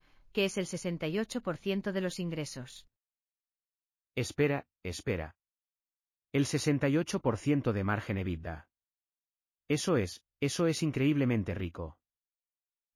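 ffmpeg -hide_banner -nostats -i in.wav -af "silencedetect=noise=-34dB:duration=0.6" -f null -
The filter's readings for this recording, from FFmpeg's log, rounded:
silence_start: 2.63
silence_end: 4.17 | silence_duration: 1.55
silence_start: 5.26
silence_end: 6.34 | silence_duration: 1.08
silence_start: 8.54
silence_end: 9.70 | silence_duration: 1.17
silence_start: 11.86
silence_end: 12.96 | silence_duration: 1.10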